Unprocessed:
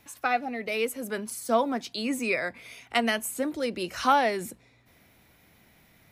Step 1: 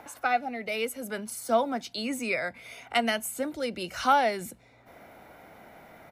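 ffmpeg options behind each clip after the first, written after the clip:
-filter_complex "[0:a]acrossover=split=280|1500|5700[s0][s1][s2][s3];[s1]acompressor=mode=upward:threshold=0.0178:ratio=2.5[s4];[s0][s4][s2][s3]amix=inputs=4:normalize=0,aecho=1:1:1.4:0.31,volume=0.841"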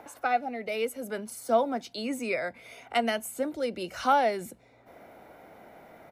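-af "equalizer=f=450:w=0.67:g=6,volume=0.631"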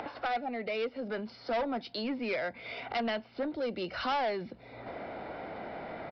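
-af "acompressor=mode=upward:threshold=0.0316:ratio=2.5,aresample=11025,asoftclip=type=tanh:threshold=0.0422,aresample=44100"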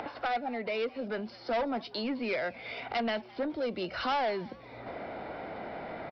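-filter_complex "[0:a]asplit=4[s0][s1][s2][s3];[s1]adelay=210,afreqshift=140,volume=0.0794[s4];[s2]adelay=420,afreqshift=280,volume=0.0343[s5];[s3]adelay=630,afreqshift=420,volume=0.0146[s6];[s0][s4][s5][s6]amix=inputs=4:normalize=0,volume=1.12"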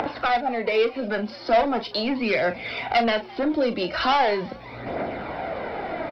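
-filter_complex "[0:a]aphaser=in_gain=1:out_gain=1:delay=3.8:decay=0.4:speed=0.4:type=triangular,asplit=2[s0][s1];[s1]adelay=39,volume=0.282[s2];[s0][s2]amix=inputs=2:normalize=0,volume=2.82"

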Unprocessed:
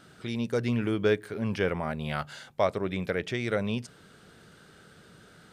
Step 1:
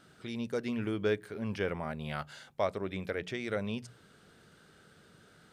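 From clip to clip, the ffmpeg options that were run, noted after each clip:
-af "bandreject=f=60:t=h:w=6,bandreject=f=120:t=h:w=6,bandreject=f=180:t=h:w=6,volume=0.531"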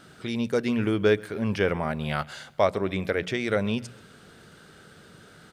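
-af "aecho=1:1:132|264|396:0.0631|0.0309|0.0151,volume=2.82"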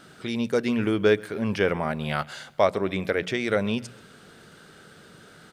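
-af "equalizer=f=66:t=o:w=1.6:g=-6,volume=1.19"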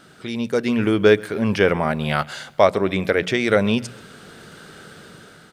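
-af "dynaudnorm=f=270:g=5:m=2.24,volume=1.12"

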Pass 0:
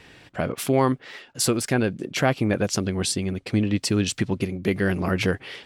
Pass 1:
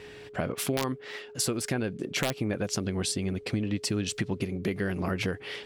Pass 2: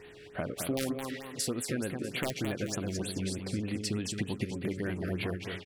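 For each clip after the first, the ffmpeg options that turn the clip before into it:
-af "aeval=exprs='(mod(2.99*val(0)+1,2)-1)/2.99':c=same,acompressor=threshold=0.0447:ratio=4,aeval=exprs='val(0)+0.00562*sin(2*PI*420*n/s)':c=same"
-filter_complex "[0:a]flanger=delay=2.8:depth=1.5:regen=80:speed=0.38:shape=triangular,asplit=2[s0][s1];[s1]aecho=0:1:216|432|648|864|1080:0.501|0.216|0.0927|0.0398|0.0171[s2];[s0][s2]amix=inputs=2:normalize=0,afftfilt=real='re*(1-between(b*sr/1024,840*pow(6700/840,0.5+0.5*sin(2*PI*3.3*pts/sr))/1.41,840*pow(6700/840,0.5+0.5*sin(2*PI*3.3*pts/sr))*1.41))':imag='im*(1-between(b*sr/1024,840*pow(6700/840,0.5+0.5*sin(2*PI*3.3*pts/sr))/1.41,840*pow(6700/840,0.5+0.5*sin(2*PI*3.3*pts/sr))*1.41))':win_size=1024:overlap=0.75"

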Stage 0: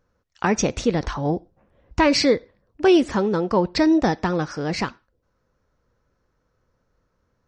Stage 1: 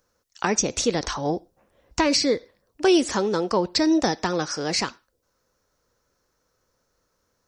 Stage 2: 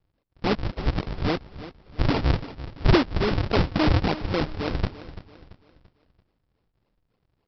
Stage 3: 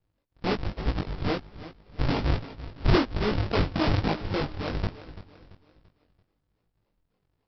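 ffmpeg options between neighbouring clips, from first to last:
-filter_complex "[0:a]bass=f=250:g=-8,treble=f=4000:g=14,acrossover=split=410[s0][s1];[s1]acompressor=threshold=0.1:ratio=6[s2];[s0][s2]amix=inputs=2:normalize=0"
-af "aresample=11025,acrusher=samples=31:mix=1:aa=0.000001:lfo=1:lforange=49.6:lforate=3.6,aresample=44100,aecho=1:1:338|676|1014|1352:0.178|0.0711|0.0285|0.0114"
-af "flanger=delay=18.5:depth=3.5:speed=1.2"

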